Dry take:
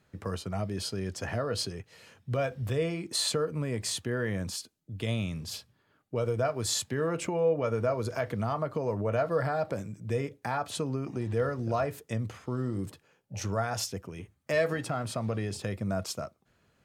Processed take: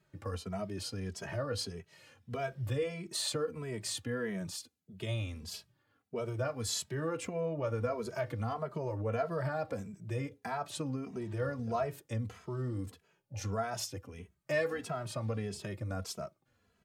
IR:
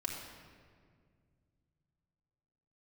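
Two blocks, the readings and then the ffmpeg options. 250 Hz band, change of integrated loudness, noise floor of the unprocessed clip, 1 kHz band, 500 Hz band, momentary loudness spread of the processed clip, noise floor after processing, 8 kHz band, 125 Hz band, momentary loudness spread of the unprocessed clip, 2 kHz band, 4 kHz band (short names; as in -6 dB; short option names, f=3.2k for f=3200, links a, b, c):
-5.5 dB, -5.5 dB, -71 dBFS, -5.0 dB, -6.0 dB, 9 LU, -76 dBFS, -5.0 dB, -4.5 dB, 9 LU, -4.5 dB, -5.0 dB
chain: -filter_complex "[0:a]asplit=2[a][b];[b]adelay=2.7,afreqshift=-1.6[c];[a][c]amix=inputs=2:normalize=1,volume=-2dB"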